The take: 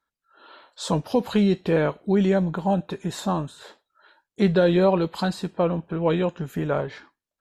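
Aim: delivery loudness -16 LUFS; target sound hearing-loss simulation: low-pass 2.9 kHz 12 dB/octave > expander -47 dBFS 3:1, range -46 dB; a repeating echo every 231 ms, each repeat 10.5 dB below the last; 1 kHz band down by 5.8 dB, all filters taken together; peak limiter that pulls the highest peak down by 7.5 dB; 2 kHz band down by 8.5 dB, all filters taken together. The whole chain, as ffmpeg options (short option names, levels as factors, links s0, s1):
-af "equalizer=f=1000:t=o:g=-6,equalizer=f=2000:t=o:g=-8.5,alimiter=limit=0.133:level=0:latency=1,lowpass=2900,aecho=1:1:231|462|693:0.299|0.0896|0.0269,agate=range=0.00501:threshold=0.00447:ratio=3,volume=3.55"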